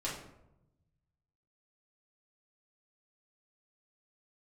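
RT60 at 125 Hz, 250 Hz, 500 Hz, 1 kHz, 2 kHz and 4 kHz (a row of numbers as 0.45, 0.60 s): 1.8, 1.2, 0.95, 0.80, 0.60, 0.45 s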